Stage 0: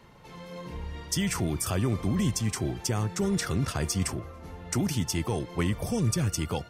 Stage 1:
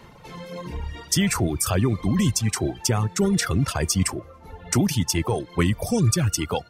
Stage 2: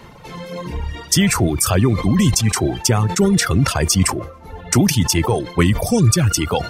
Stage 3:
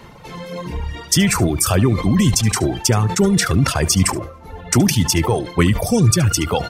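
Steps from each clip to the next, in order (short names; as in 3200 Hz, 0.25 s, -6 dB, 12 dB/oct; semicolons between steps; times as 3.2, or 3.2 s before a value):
reverb removal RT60 1.8 s; gain +7.5 dB
sustainer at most 110 dB/s; gain +6 dB
echo 73 ms -18 dB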